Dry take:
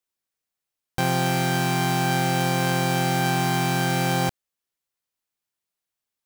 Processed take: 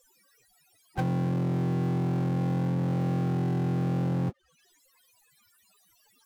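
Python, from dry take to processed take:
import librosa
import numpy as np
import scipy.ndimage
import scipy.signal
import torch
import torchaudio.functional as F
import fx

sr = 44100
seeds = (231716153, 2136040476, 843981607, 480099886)

y = fx.spec_topn(x, sr, count=16)
y = fx.env_lowpass_down(y, sr, base_hz=330.0, full_db=-21.5)
y = fx.power_curve(y, sr, exponent=0.5)
y = F.gain(torch.from_numpy(y), -5.0).numpy()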